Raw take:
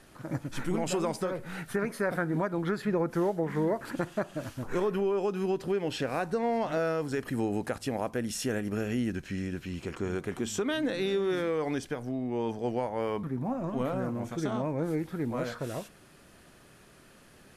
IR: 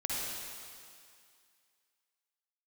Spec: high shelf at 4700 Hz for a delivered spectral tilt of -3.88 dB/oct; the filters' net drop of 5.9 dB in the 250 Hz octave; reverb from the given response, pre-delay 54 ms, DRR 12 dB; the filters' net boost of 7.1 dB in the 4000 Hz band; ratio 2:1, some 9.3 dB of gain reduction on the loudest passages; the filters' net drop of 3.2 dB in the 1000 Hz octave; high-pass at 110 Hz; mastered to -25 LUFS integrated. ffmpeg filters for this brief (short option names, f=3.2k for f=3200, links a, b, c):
-filter_complex "[0:a]highpass=110,equalizer=f=250:t=o:g=-8,equalizer=f=1k:t=o:g=-4.5,equalizer=f=4k:t=o:g=6.5,highshelf=f=4.7k:g=6,acompressor=threshold=-45dB:ratio=2,asplit=2[a][b];[1:a]atrim=start_sample=2205,adelay=54[c];[b][c]afir=irnorm=-1:irlink=0,volume=-17.5dB[d];[a][d]amix=inputs=2:normalize=0,volume=17dB"